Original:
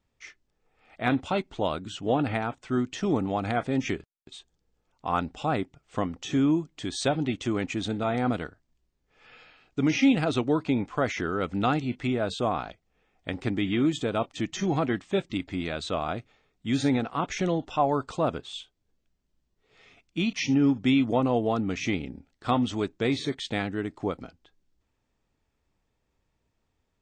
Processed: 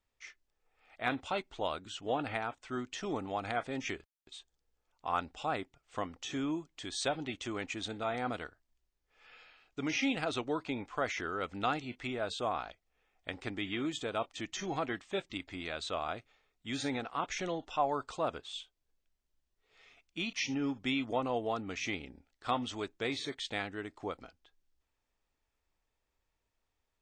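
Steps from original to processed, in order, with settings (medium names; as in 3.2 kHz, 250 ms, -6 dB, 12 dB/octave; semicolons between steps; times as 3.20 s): peaking EQ 160 Hz -11.5 dB 2.6 oct; trim -4 dB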